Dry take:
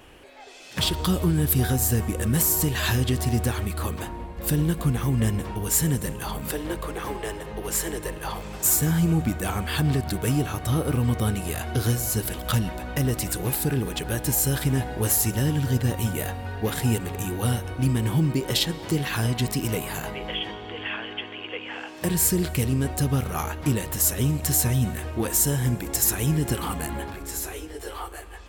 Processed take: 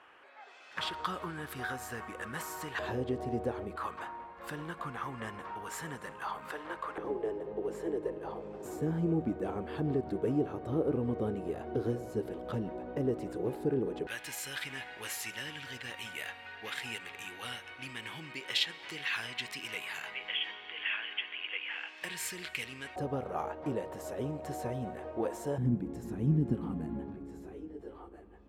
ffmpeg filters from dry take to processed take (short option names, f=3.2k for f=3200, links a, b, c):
-af "asetnsamples=n=441:p=0,asendcmd='2.79 bandpass f 510;3.76 bandpass f 1200;6.98 bandpass f 410;14.07 bandpass f 2300;22.96 bandpass f 590;25.58 bandpass f 220',bandpass=f=1.3k:t=q:w=1.8:csg=0"